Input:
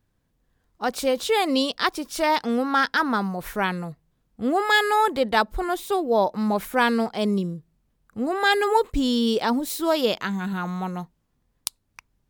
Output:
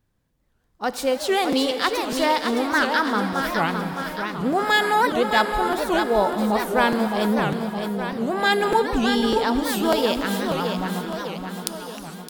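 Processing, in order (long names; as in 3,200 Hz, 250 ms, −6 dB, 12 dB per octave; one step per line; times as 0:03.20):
on a send: repeating echo 614 ms, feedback 56%, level −6 dB
on the sum: reverb whose tail is shaped and stops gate 490 ms flat, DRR 9 dB
regular buffer underruns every 0.60 s, samples 256, repeat, from 0:00.92
wow of a warped record 78 rpm, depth 250 cents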